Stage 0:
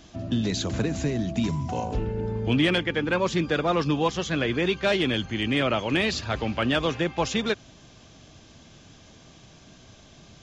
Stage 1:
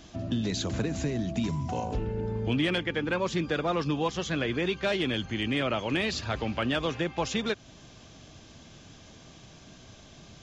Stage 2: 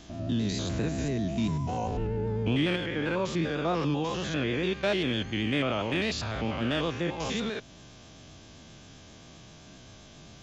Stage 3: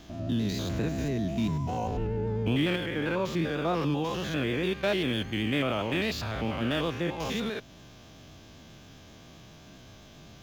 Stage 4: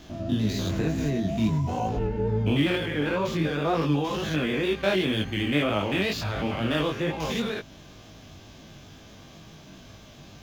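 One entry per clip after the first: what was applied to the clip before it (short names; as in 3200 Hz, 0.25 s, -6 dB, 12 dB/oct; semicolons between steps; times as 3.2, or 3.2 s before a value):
compressor 1.5:1, threshold -32 dBFS, peak gain reduction 5.5 dB
stepped spectrum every 0.1 s; vibrato 7.6 Hz 43 cents; gain +2 dB
median filter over 5 samples
chorus 2.1 Hz, delay 18.5 ms, depth 2.9 ms; gain +6 dB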